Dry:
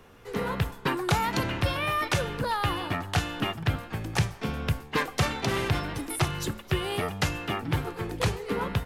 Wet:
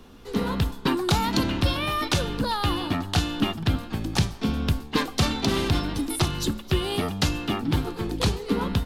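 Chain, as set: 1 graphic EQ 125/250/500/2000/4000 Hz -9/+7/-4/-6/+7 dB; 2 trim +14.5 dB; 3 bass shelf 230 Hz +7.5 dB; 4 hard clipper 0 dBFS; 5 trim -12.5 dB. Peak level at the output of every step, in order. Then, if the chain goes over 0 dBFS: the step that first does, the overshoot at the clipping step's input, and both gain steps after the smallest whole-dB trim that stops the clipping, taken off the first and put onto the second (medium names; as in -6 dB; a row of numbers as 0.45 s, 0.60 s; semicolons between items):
-9.5 dBFS, +5.0 dBFS, +6.0 dBFS, 0.0 dBFS, -12.5 dBFS; step 2, 6.0 dB; step 2 +8.5 dB, step 5 -6.5 dB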